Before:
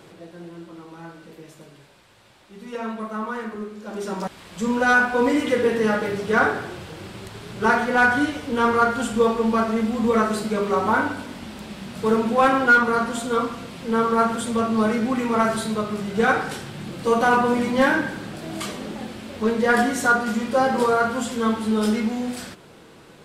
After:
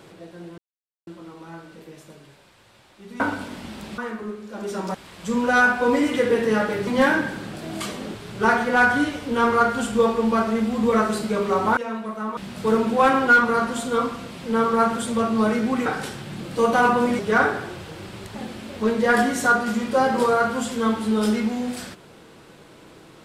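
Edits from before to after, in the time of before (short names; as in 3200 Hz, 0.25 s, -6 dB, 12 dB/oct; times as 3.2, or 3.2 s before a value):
0.58 insert silence 0.49 s
2.71–3.31 swap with 10.98–11.76
6.2–7.36 swap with 17.67–18.95
15.25–16.34 cut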